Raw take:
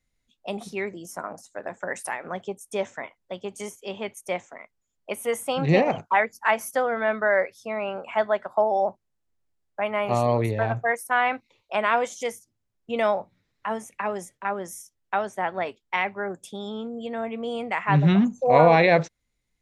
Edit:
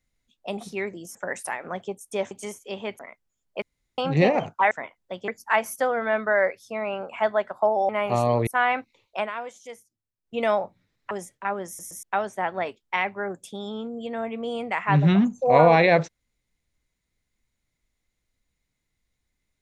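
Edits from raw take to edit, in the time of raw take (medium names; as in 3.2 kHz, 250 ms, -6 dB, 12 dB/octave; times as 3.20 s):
1.15–1.75 s: delete
2.91–3.48 s: move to 6.23 s
4.16–4.51 s: delete
5.14–5.50 s: room tone
8.84–9.88 s: delete
10.46–11.03 s: delete
11.73–12.92 s: dip -11.5 dB, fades 0.14 s
13.67–14.11 s: delete
14.67 s: stutter in place 0.12 s, 3 plays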